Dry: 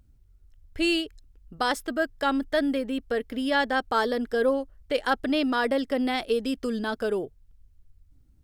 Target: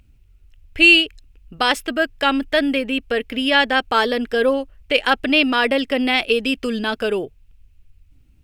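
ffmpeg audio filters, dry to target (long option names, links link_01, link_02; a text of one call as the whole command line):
ffmpeg -i in.wav -af "equalizer=frequency=2600:width_type=o:width=0.64:gain=14.5,volume=5.5dB" out.wav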